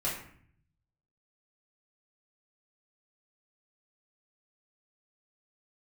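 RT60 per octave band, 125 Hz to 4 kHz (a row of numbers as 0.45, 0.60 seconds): 1.3, 0.85, 0.60, 0.55, 0.60, 0.45 seconds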